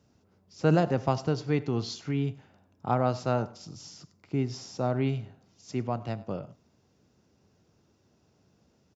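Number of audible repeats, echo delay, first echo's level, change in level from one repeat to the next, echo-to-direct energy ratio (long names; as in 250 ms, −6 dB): 1, 98 ms, −20.5 dB, repeats not evenly spaced, −20.5 dB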